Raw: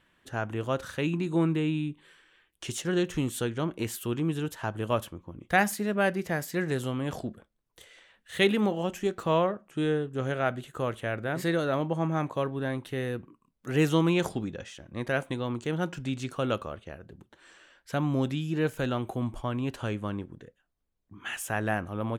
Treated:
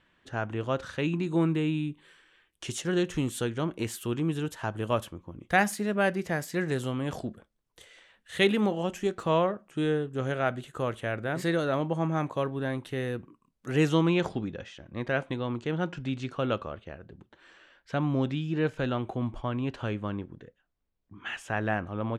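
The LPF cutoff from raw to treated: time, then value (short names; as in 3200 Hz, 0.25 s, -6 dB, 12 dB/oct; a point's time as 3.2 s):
0.81 s 5900 Hz
1.67 s 11000 Hz
13.71 s 11000 Hz
14.19 s 4400 Hz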